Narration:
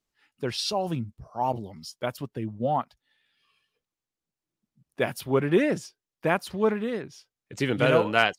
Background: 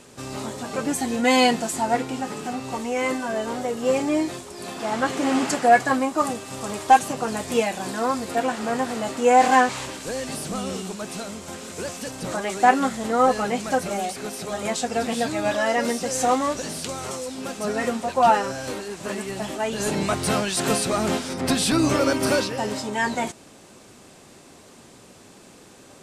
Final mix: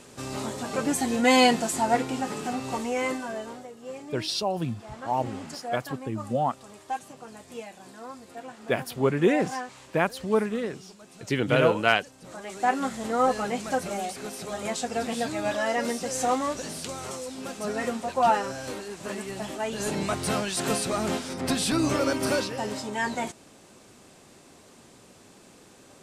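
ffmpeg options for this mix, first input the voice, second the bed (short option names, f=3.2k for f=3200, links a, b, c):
-filter_complex "[0:a]adelay=3700,volume=0dB[a];[1:a]volume=12dB,afade=t=out:st=2.75:d=0.95:silence=0.149624,afade=t=in:st=12.21:d=0.8:silence=0.223872[b];[a][b]amix=inputs=2:normalize=0"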